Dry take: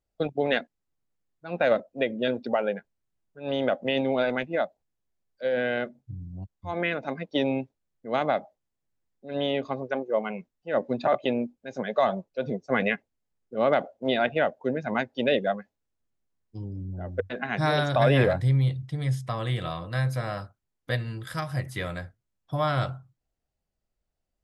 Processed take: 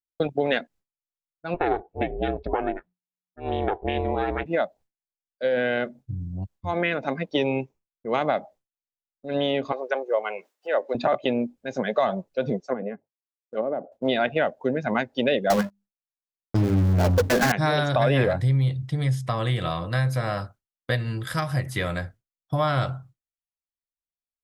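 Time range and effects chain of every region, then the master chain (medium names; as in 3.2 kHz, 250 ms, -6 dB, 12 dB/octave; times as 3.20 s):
1.54–4.46 s: distance through air 330 m + ring modulator 180 Hz
7.35–8.18 s: rippled EQ curve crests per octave 0.76, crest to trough 7 dB + tape noise reduction on one side only decoder only
9.72–10.95 s: high-pass 410 Hz 24 dB/octave + upward compressor, threshold -37 dBFS
12.60–13.92 s: frequency weighting A + low-pass that closes with the level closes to 380 Hz, closed at -25 dBFS + hum notches 50/100/150 Hz
15.50–17.52 s: dead-time distortion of 0.14 ms + hum notches 50/100/150/200/250 Hz + waveshaping leveller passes 5
whole clip: expander -48 dBFS; compression 2:1, threshold -29 dBFS; trim +6.5 dB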